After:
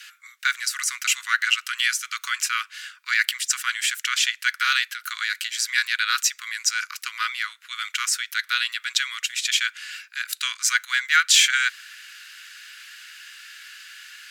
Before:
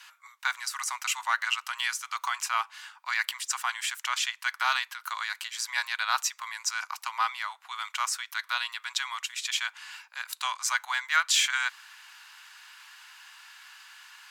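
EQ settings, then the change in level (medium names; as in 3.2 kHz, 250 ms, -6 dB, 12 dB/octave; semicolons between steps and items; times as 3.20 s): steep high-pass 1.4 kHz 48 dB/octave; +8.0 dB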